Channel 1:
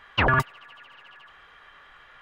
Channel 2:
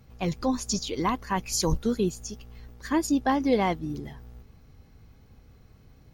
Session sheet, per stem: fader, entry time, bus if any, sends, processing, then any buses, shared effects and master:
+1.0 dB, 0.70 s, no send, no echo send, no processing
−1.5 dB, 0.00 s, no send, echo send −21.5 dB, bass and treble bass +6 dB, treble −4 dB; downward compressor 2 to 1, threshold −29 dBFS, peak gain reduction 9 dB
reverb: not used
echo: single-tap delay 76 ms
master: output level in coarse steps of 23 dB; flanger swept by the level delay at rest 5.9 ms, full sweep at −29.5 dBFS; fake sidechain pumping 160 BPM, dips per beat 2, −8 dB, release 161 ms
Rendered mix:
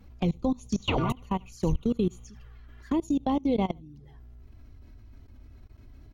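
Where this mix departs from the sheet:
stem 2 −1.5 dB → +5.5 dB
master: missing fake sidechain pumping 160 BPM, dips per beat 2, −8 dB, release 161 ms

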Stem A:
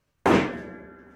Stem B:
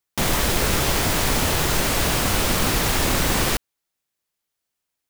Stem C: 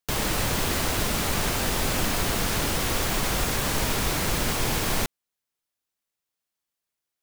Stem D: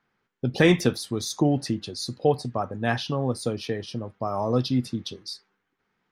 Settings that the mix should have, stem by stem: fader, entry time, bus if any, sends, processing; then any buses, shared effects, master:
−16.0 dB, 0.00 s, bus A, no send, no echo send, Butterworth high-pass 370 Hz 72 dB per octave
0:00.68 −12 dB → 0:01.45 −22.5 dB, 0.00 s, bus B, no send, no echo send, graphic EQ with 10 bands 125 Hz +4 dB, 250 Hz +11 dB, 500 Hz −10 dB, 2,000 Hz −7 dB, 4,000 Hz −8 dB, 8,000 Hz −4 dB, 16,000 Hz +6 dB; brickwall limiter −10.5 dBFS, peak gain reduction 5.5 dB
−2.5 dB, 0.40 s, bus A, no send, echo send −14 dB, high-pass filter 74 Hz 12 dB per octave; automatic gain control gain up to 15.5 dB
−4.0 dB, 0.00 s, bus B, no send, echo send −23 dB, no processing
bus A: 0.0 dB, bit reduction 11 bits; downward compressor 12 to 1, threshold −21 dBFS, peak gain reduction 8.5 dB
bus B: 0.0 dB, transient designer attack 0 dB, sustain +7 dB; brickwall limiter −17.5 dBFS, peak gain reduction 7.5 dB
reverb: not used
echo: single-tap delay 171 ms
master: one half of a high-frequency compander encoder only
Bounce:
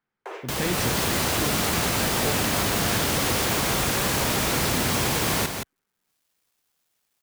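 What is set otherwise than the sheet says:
stem B: muted
stem D −4.0 dB → −11.0 dB
master: missing one half of a high-frequency compander encoder only

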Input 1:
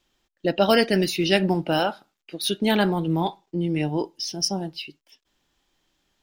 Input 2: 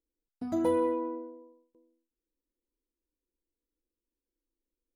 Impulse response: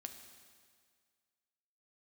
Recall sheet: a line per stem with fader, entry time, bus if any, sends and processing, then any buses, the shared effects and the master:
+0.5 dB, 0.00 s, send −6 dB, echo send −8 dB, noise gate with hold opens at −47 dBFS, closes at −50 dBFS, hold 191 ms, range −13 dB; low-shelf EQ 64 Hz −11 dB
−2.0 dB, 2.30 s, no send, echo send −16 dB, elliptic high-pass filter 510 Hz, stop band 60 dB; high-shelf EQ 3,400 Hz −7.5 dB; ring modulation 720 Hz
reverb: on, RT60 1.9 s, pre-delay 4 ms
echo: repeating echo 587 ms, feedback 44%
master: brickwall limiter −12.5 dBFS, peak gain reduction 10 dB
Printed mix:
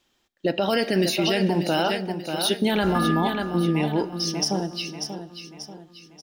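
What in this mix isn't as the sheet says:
stem 1: missing noise gate with hold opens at −47 dBFS, closes at −50 dBFS, hold 191 ms, range −13 dB
stem 2 −2.0 dB → +9.5 dB

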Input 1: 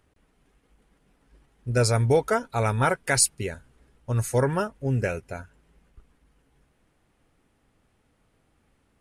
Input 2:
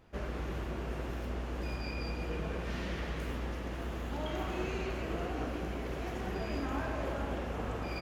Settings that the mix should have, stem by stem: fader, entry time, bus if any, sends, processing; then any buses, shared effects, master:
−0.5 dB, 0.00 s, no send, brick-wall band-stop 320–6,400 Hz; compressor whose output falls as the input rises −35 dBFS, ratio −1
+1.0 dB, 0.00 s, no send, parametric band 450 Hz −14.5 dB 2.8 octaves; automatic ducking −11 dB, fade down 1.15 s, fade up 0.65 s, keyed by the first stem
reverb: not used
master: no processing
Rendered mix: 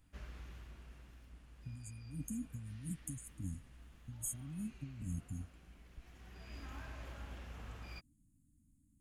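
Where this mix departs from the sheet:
stem 1 −0.5 dB → −10.0 dB
stem 2 +1.0 dB → −7.0 dB

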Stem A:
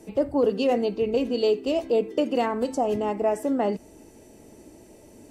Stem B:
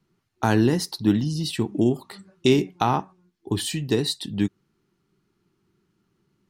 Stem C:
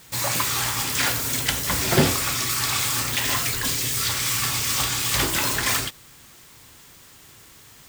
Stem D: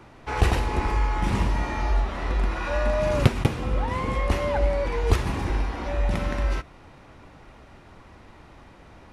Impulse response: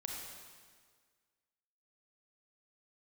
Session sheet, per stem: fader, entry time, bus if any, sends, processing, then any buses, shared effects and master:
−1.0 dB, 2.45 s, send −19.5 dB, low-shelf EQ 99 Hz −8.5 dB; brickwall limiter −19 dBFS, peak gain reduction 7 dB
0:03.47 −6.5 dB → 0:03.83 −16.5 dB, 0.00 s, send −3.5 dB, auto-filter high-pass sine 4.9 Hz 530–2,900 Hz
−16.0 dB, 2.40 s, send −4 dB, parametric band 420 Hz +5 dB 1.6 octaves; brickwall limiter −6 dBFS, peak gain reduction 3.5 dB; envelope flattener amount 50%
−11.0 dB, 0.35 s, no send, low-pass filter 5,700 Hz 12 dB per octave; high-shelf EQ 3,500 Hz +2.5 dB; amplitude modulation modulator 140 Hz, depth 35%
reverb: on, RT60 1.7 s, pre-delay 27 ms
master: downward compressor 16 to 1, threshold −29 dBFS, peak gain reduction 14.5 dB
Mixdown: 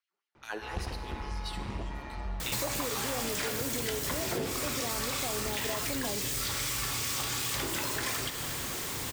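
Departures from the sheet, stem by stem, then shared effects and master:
stem B −6.5 dB → −17.0 dB
stem C −16.0 dB → −8.5 dB

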